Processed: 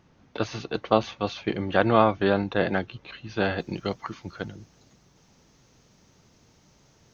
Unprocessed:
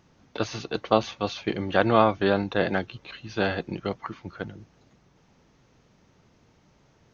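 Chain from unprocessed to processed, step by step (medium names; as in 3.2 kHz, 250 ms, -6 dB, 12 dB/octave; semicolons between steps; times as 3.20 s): tone controls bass +1 dB, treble -4 dB, from 3.58 s treble +11 dB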